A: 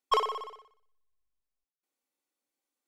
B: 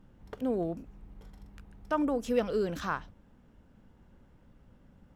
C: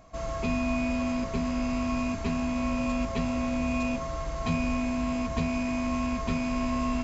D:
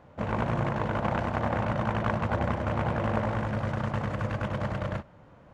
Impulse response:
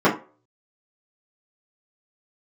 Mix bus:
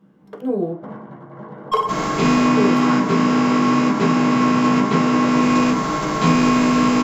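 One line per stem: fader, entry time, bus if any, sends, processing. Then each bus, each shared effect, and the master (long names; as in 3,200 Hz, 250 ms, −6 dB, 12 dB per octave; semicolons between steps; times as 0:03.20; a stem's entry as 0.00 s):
0.0 dB, 1.60 s, send −19.5 dB, no processing
0.0 dB, 0.00 s, muted 0:00.76–0:02.57, send −17.5 dB, high-pass filter 150 Hz
+1.0 dB, 1.75 s, send −12 dB, compressing power law on the bin magnitudes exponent 0.57; automatic ducking −7 dB, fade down 0.20 s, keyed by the second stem
−15.0 dB, 0.65 s, send −8.5 dB, notch filter 2,500 Hz, Q 5.8; compressor whose output falls as the input rises −34 dBFS, ratio −0.5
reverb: on, RT60 0.35 s, pre-delay 3 ms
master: notch filter 540 Hz, Q 12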